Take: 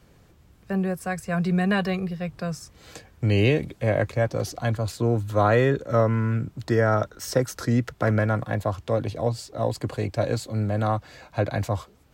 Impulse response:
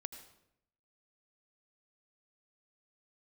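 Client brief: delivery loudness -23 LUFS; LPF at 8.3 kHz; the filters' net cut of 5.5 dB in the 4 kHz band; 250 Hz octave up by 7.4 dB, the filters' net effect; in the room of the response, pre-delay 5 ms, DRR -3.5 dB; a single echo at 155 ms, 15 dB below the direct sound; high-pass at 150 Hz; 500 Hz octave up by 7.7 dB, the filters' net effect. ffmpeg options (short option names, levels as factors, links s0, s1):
-filter_complex "[0:a]highpass=150,lowpass=8300,equalizer=f=250:t=o:g=9,equalizer=f=500:t=o:g=7,equalizer=f=4000:t=o:g=-8,aecho=1:1:155:0.178,asplit=2[s0][s1];[1:a]atrim=start_sample=2205,adelay=5[s2];[s1][s2]afir=irnorm=-1:irlink=0,volume=2.11[s3];[s0][s3]amix=inputs=2:normalize=0,volume=0.355"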